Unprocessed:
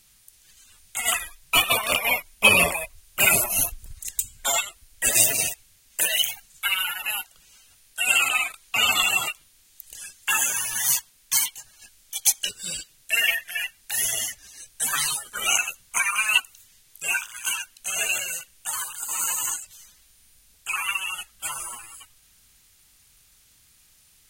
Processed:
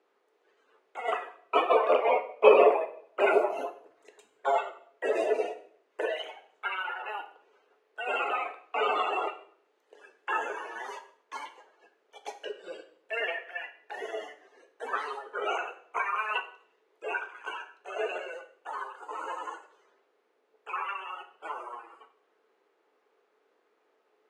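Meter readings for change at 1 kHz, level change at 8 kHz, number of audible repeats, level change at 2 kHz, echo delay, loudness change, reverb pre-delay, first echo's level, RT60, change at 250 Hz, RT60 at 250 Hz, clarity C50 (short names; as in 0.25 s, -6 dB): +1.5 dB, -36.5 dB, none, -11.0 dB, none, -7.5 dB, 3 ms, none, 0.55 s, -1.5 dB, 0.65 s, 12.5 dB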